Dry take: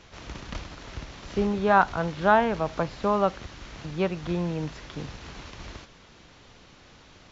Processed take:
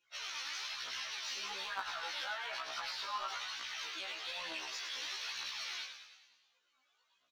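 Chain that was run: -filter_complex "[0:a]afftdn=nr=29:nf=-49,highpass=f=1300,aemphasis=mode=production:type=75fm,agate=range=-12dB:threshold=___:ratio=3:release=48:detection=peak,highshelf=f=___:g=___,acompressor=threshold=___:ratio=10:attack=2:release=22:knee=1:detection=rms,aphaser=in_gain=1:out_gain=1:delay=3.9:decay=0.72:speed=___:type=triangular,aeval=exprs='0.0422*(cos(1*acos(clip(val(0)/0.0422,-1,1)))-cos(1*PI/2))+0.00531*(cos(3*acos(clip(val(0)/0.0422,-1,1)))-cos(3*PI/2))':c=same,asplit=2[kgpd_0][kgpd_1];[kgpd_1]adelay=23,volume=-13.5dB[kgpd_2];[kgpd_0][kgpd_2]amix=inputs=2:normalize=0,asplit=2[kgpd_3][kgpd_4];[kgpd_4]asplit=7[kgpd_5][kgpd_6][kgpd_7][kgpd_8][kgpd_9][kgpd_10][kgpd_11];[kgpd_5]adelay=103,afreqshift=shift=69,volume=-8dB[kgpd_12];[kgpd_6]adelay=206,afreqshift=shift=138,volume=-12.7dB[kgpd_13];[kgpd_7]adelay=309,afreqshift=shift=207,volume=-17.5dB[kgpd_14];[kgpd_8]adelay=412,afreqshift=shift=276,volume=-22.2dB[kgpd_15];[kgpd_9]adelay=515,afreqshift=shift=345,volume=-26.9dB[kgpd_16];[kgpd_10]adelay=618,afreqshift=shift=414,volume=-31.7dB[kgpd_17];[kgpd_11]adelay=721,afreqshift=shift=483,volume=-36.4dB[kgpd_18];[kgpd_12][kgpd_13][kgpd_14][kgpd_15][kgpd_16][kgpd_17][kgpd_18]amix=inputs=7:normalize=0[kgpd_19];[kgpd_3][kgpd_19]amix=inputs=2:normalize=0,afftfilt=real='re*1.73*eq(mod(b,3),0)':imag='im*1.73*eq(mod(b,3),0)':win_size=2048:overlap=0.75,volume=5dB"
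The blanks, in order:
-59dB, 3400, 8, -41dB, 1.1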